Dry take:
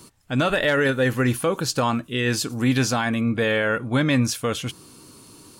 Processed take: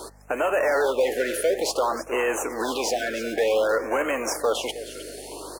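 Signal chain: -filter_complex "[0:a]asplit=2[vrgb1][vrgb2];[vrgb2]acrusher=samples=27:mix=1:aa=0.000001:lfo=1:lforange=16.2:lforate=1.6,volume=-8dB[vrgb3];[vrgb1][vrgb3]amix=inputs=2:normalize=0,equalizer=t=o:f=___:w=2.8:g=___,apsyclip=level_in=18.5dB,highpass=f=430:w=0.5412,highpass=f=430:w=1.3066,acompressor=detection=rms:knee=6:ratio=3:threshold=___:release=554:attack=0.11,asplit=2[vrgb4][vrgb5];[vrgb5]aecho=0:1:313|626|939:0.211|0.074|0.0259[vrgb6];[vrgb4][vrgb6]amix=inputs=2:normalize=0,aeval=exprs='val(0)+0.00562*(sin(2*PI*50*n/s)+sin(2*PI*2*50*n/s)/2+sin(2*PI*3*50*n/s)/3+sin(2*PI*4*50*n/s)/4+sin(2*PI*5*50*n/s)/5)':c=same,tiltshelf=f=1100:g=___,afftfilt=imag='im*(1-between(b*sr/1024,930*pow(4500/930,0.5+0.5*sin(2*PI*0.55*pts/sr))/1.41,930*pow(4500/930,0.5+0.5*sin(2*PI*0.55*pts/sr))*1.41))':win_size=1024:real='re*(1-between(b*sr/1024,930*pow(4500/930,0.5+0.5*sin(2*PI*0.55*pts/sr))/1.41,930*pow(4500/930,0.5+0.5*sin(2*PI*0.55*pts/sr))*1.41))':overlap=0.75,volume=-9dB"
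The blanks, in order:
590, 5, -9dB, 3.5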